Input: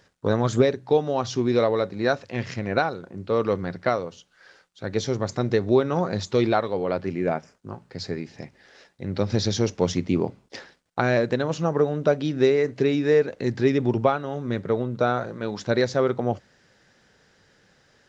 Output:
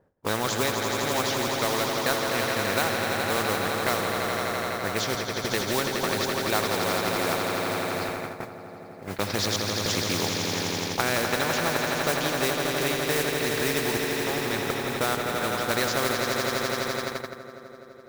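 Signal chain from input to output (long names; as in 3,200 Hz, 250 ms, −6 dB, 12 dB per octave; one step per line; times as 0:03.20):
low-pass that shuts in the quiet parts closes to 610 Hz, open at −18.5 dBFS
gate pattern "xxxxx..xxx.xx.x" 102 BPM
in parallel at −1.5 dB: downward compressor, threshold −31 dBFS, peak gain reduction 16.5 dB
on the sum: low-shelf EQ 460 Hz −9 dB
notch filter 2,900 Hz, Q 24
echo that builds up and dies away 84 ms, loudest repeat 5, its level −9 dB
noise gate −31 dBFS, range −15 dB
noise that follows the level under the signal 18 dB
high-shelf EQ 4,000 Hz −9.5 dB
mains-hum notches 60/120 Hz
every bin compressed towards the loudest bin 2 to 1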